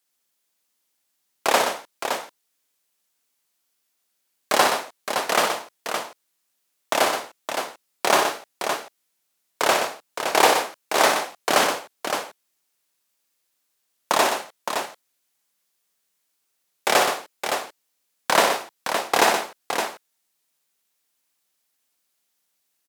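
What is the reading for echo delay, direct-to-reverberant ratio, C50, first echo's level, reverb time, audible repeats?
59 ms, none, none, -6.5 dB, none, 3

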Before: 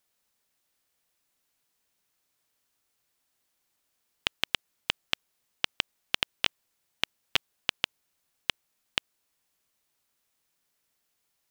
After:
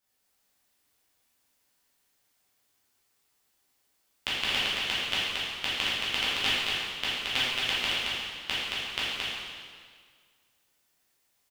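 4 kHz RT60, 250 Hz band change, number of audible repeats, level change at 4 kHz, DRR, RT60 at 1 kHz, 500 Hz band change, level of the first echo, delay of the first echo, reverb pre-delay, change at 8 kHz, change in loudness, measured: 1.7 s, +5.5 dB, 1, +5.0 dB, -11.5 dB, 1.8 s, +5.0 dB, -3.0 dB, 0.223 s, 6 ms, +4.5 dB, +4.0 dB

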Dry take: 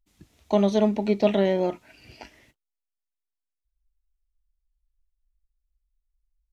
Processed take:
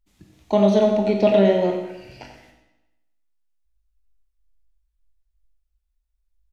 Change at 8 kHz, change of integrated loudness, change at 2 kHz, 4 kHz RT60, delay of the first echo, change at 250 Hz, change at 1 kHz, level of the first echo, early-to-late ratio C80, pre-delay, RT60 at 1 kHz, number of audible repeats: n/a, +4.5 dB, +3.5 dB, 0.90 s, 91 ms, +3.5 dB, +4.0 dB, -9.5 dB, 5.5 dB, 16 ms, 1.0 s, 1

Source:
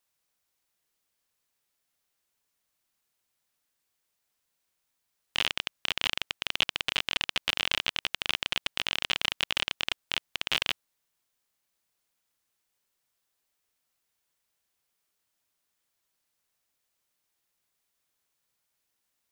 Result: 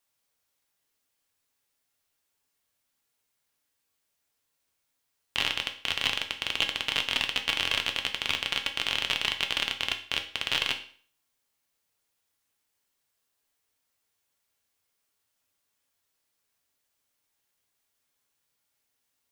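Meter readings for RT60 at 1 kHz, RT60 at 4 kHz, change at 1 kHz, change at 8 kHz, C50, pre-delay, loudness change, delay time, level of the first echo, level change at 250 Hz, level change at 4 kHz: 0.50 s, 0.45 s, +1.5 dB, +1.0 dB, 11.5 dB, 4 ms, +1.5 dB, none, none, +2.0 dB, +1.5 dB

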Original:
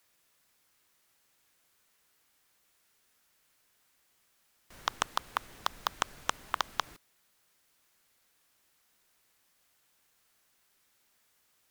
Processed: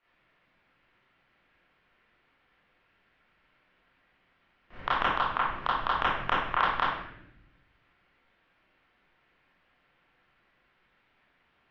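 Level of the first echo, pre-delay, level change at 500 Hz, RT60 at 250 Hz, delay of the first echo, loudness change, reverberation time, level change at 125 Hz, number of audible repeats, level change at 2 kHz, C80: none, 25 ms, +8.5 dB, 1.4 s, none, +7.0 dB, 0.75 s, +11.0 dB, none, +9.0 dB, 3.5 dB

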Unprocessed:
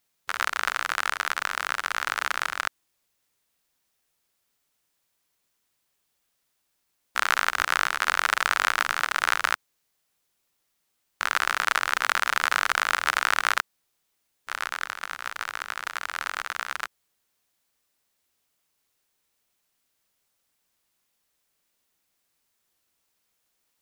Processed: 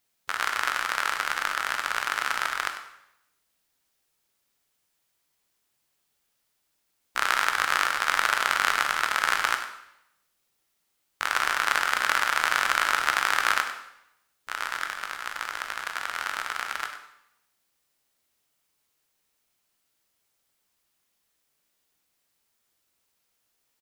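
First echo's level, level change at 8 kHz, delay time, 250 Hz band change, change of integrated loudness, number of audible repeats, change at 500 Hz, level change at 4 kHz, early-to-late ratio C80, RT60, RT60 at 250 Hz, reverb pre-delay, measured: -11.5 dB, 0.0 dB, 98 ms, +0.5 dB, +0.5 dB, 1, +0.5 dB, +0.5 dB, 8.5 dB, 0.80 s, 0.80 s, 6 ms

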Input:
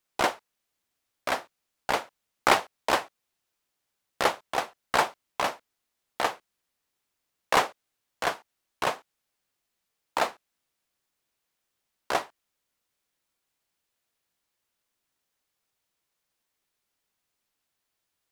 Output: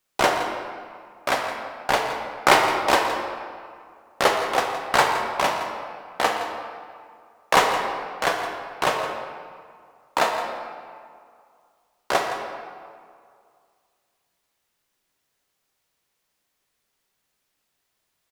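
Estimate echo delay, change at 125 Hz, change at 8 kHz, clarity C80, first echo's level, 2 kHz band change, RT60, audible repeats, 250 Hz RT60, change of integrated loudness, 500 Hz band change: 0.166 s, +7.0 dB, +6.0 dB, 4.5 dB, -13.0 dB, +6.5 dB, 2.2 s, 1, 2.1 s, +5.5 dB, +7.0 dB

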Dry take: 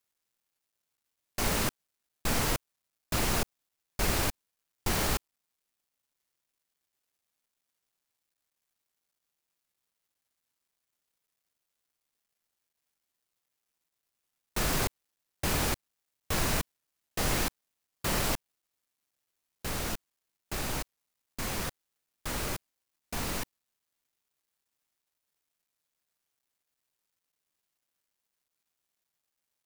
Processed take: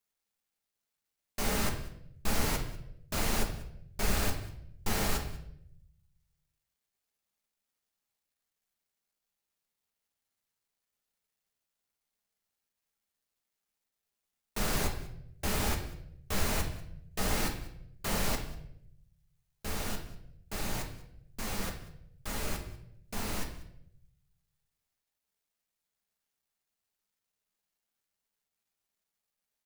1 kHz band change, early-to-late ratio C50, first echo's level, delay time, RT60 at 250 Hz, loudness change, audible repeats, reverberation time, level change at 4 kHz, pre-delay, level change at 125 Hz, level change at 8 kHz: -2.5 dB, 7.5 dB, -20.5 dB, 0.192 s, 1.1 s, -3.0 dB, 1, 0.75 s, -3.0 dB, 4 ms, -1.0 dB, -3.0 dB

